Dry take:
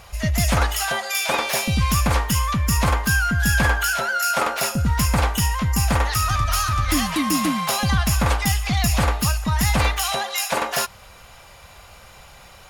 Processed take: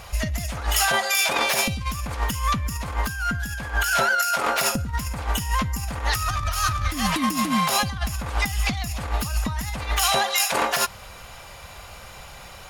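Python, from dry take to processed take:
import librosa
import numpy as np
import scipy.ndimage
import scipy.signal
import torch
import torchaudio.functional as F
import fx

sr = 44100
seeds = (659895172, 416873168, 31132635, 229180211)

y = fx.over_compress(x, sr, threshold_db=-23.0, ratio=-0.5)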